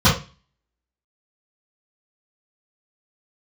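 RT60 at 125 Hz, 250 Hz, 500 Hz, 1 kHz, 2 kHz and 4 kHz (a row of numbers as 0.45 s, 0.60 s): 0.40 s, 0.35 s, 0.30 s, 0.35 s, 0.35 s, 0.35 s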